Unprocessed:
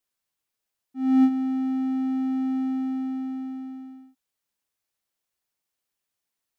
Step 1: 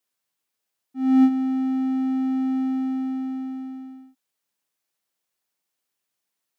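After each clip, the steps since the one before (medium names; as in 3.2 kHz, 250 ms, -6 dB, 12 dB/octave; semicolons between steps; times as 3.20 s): high-pass 130 Hz; trim +2.5 dB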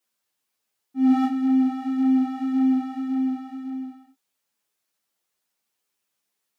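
three-phase chorus; trim +5.5 dB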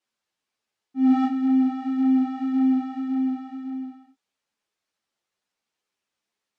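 distance through air 74 m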